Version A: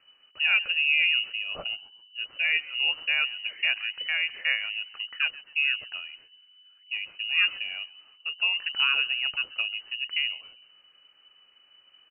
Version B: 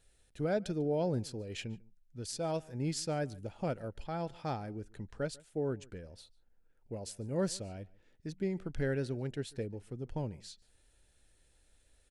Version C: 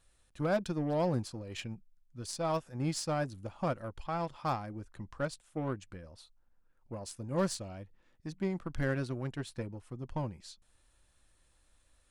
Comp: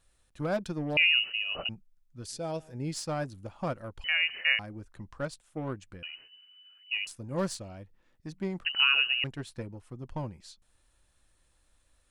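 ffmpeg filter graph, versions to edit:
-filter_complex "[0:a]asplit=4[s0][s1][s2][s3];[2:a]asplit=6[s4][s5][s6][s7][s8][s9];[s4]atrim=end=0.972[s10];[s0]atrim=start=0.968:end=1.692[s11];[s5]atrim=start=1.688:end=2.272[s12];[1:a]atrim=start=2.268:end=2.942[s13];[s6]atrim=start=2.938:end=4.042[s14];[s1]atrim=start=4.038:end=4.592[s15];[s7]atrim=start=4.588:end=6.032[s16];[s2]atrim=start=6.028:end=7.072[s17];[s8]atrim=start=7.068:end=8.652[s18];[s3]atrim=start=8.648:end=9.242[s19];[s9]atrim=start=9.238[s20];[s10][s11]acrossfade=d=0.004:c1=hsin:c2=hsin[s21];[s21][s12]acrossfade=d=0.004:c1=hsin:c2=hsin[s22];[s22][s13]acrossfade=d=0.004:c1=hsin:c2=hsin[s23];[s23][s14]acrossfade=d=0.004:c1=hsin:c2=hsin[s24];[s24][s15]acrossfade=d=0.004:c1=hsin:c2=hsin[s25];[s25][s16]acrossfade=d=0.004:c1=hsin:c2=hsin[s26];[s26][s17]acrossfade=d=0.004:c1=hsin:c2=hsin[s27];[s27][s18]acrossfade=d=0.004:c1=hsin:c2=hsin[s28];[s28][s19]acrossfade=d=0.004:c1=hsin:c2=hsin[s29];[s29][s20]acrossfade=d=0.004:c1=hsin:c2=hsin"

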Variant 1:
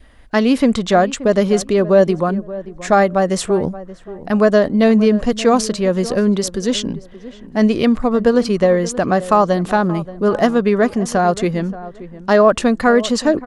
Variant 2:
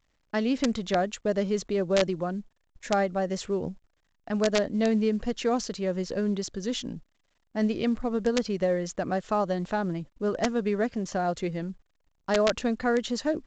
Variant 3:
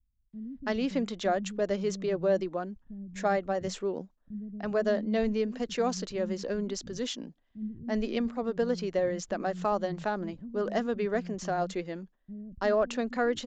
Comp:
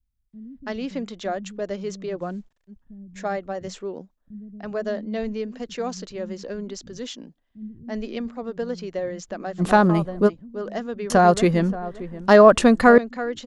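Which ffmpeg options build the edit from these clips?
-filter_complex "[0:a]asplit=2[s0][s1];[2:a]asplit=4[s2][s3][s4][s5];[s2]atrim=end=2.23[s6];[1:a]atrim=start=2.17:end=2.73[s7];[s3]atrim=start=2.67:end=9.62[s8];[s0]atrim=start=9.58:end=10.3[s9];[s4]atrim=start=10.26:end=11.102[s10];[s1]atrim=start=11.098:end=12.982[s11];[s5]atrim=start=12.978[s12];[s6][s7]acrossfade=d=0.06:c1=tri:c2=tri[s13];[s13][s8]acrossfade=d=0.06:c1=tri:c2=tri[s14];[s14][s9]acrossfade=d=0.04:c1=tri:c2=tri[s15];[s15][s10]acrossfade=d=0.04:c1=tri:c2=tri[s16];[s16][s11]acrossfade=d=0.004:c1=hsin:c2=hsin[s17];[s17][s12]acrossfade=d=0.004:c1=hsin:c2=hsin"

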